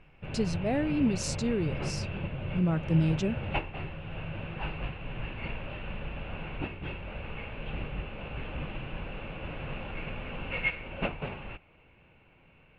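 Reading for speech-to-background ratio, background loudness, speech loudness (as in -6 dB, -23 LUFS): 6.5 dB, -37.0 LUFS, -30.5 LUFS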